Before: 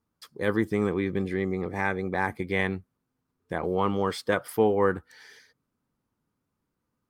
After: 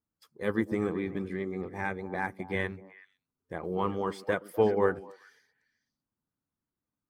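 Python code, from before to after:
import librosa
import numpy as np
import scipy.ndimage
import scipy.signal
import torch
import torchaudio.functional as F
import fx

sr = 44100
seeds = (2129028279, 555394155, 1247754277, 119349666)

y = fx.spec_quant(x, sr, step_db=15)
y = fx.peak_eq(y, sr, hz=4000.0, db=-2.5, octaves=0.77)
y = fx.echo_stepped(y, sr, ms=125, hz=280.0, octaves=1.4, feedback_pct=70, wet_db=-7)
y = fx.upward_expand(y, sr, threshold_db=-38.0, expansion=1.5)
y = y * librosa.db_to_amplitude(-1.0)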